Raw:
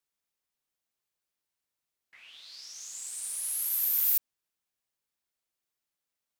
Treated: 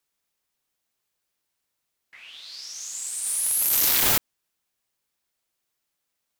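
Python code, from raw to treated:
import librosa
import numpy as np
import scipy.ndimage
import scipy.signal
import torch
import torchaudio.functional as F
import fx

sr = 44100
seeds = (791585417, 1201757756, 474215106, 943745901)

y = fx.law_mismatch(x, sr, coded='mu', at=(3.26, 3.89))
y = (np.mod(10.0 ** (22.0 / 20.0) * y + 1.0, 2.0) - 1.0) / 10.0 ** (22.0 / 20.0)
y = y * 10.0 ** (7.5 / 20.0)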